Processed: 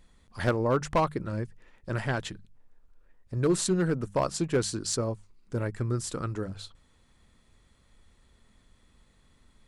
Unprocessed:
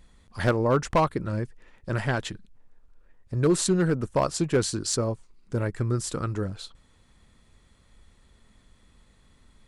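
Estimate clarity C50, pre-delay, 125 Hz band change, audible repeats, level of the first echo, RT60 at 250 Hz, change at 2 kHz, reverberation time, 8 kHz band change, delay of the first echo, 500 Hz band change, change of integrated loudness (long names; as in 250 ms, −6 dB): no reverb audible, no reverb audible, −3.5 dB, no echo audible, no echo audible, no reverb audible, −3.0 dB, no reverb audible, −3.0 dB, no echo audible, −3.0 dB, −3.0 dB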